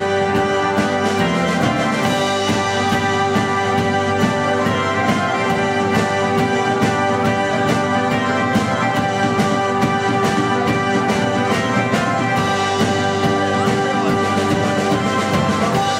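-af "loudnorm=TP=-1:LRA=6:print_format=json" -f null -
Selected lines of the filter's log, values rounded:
"input_i" : "-17.0",
"input_tp" : "-5.6",
"input_lra" : "0.0",
"input_thresh" : "-27.0",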